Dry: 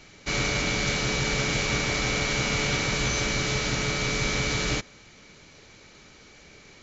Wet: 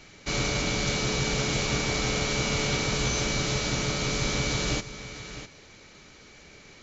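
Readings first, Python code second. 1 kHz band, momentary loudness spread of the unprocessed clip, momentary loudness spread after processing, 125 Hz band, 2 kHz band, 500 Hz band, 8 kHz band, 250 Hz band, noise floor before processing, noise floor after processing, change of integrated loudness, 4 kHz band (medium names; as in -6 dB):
-1.0 dB, 2 LU, 13 LU, 0.0 dB, -3.5 dB, 0.0 dB, no reading, 0.0 dB, -52 dBFS, -51 dBFS, -1.5 dB, -1.0 dB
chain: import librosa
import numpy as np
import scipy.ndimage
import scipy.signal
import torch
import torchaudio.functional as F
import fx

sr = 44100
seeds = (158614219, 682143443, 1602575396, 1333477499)

y = x + 10.0 ** (-13.5 / 20.0) * np.pad(x, (int(653 * sr / 1000.0), 0))[:len(x)]
y = fx.dynamic_eq(y, sr, hz=1900.0, q=1.4, threshold_db=-43.0, ratio=4.0, max_db=-5)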